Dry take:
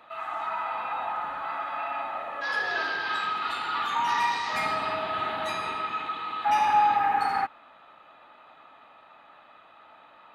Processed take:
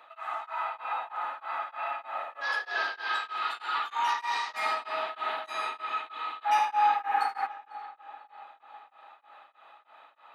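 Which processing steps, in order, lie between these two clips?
high-pass filter 520 Hz 12 dB per octave
feedback echo with a low-pass in the loop 496 ms, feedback 60%, low-pass 2,900 Hz, level −17 dB
tremolo along a rectified sine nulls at 3.2 Hz

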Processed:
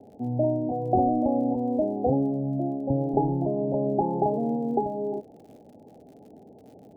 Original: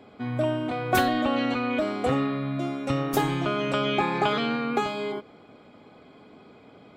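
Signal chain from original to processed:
Butterworth low-pass 860 Hz 96 dB per octave
surface crackle 35 per second −50 dBFS, from 0:02.39 10 per second, from 0:04.23 92 per second
level +1.5 dB

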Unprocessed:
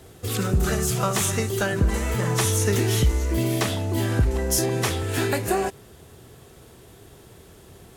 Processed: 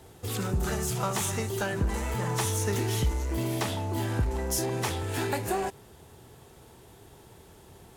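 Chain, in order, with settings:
parametric band 880 Hz +9 dB 0.25 octaves
in parallel at −10 dB: wave folding −25.5 dBFS
on the sum: level −7 dB

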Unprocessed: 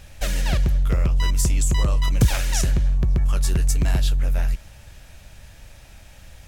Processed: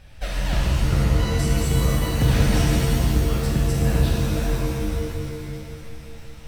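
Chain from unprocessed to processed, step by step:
high-shelf EQ 5,700 Hz −10.5 dB
notch filter 6,800 Hz, Q 5.9
reverb with rising layers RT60 2.5 s, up +7 semitones, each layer −2 dB, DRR −3.5 dB
level −4 dB

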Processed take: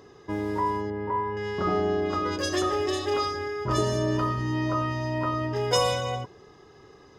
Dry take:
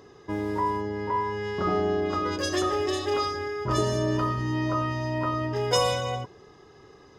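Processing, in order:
0:00.90–0:01.37: Bessel low-pass filter 1,700 Hz, order 2

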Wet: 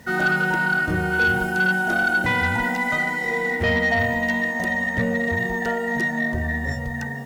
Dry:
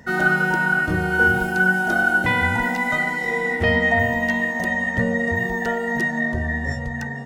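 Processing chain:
harmonic generator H 5 −18 dB, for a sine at −5 dBFS
bit reduction 8 bits
level −4.5 dB

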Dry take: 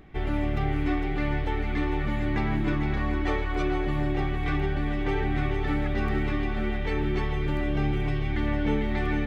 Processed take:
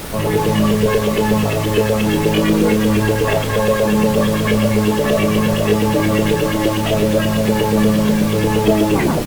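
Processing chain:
turntable brake at the end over 0.32 s
high-pass filter 86 Hz 24 dB per octave
bass and treble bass +6 dB, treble −4 dB
notch filter 870 Hz, Q 12
in parallel at +0.5 dB: brickwall limiter −21.5 dBFS, peak gain reduction 9 dB
on the sum: auto-filter low-pass saw up 8.4 Hz 250–2,400 Hz
pitch shifter +6.5 semitones
background noise pink −31 dBFS
ambience of single reflections 29 ms −9 dB, 39 ms −15 dB
level +3.5 dB
Opus 32 kbit/s 48,000 Hz

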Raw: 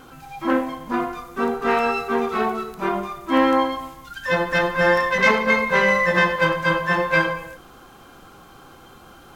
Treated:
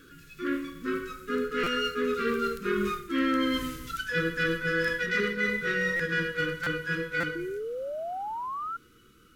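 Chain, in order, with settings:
source passing by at 0:03.31, 23 m/s, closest 18 metres
Chebyshev band-stop filter 460–1,300 Hz, order 3
mains-hum notches 50/100/150 Hz
reversed playback
downward compressor 5 to 1, threshold −32 dBFS, peak gain reduction 14.5 dB
reversed playback
sound drawn into the spectrogram rise, 0:07.35–0:08.77, 330–1,400 Hz −41 dBFS
buffer that repeats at 0:01.63/0:05.96/0:06.63/0:07.20, samples 256, times 5
level +7 dB

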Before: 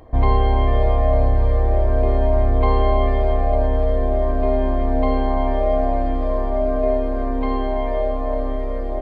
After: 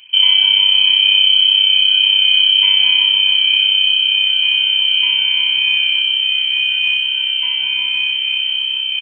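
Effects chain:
samples sorted by size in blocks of 8 samples
comb filter 1.4 ms, depth 70%
voice inversion scrambler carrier 3,100 Hz
level −2.5 dB

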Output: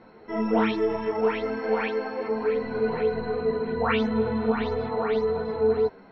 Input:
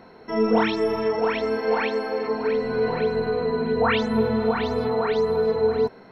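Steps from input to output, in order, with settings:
low-pass filter 3,600 Hz 12 dB per octave
string-ensemble chorus

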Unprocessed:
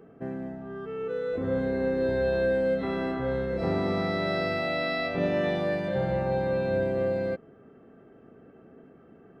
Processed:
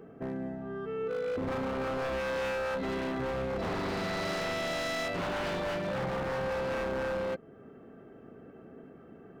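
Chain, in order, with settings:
in parallel at −2.5 dB: downward compressor, threshold −41 dBFS, peak gain reduction 17.5 dB
on the sum: wave folding −25 dBFS
level −3 dB

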